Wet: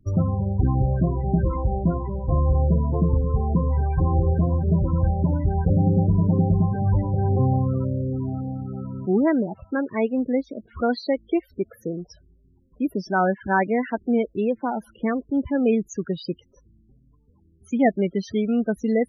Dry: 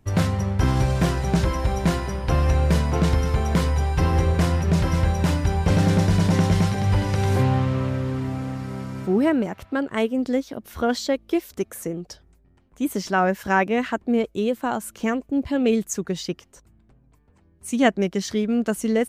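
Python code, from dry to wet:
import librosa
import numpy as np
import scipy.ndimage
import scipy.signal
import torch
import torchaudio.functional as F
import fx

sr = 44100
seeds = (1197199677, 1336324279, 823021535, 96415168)

y = scipy.signal.medfilt(x, 5)
y = fx.spec_topn(y, sr, count=16)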